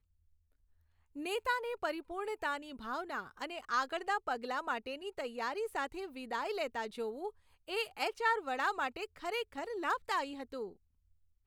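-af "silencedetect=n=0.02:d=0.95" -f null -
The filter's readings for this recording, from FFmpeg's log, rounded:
silence_start: 0.00
silence_end: 1.26 | silence_duration: 1.26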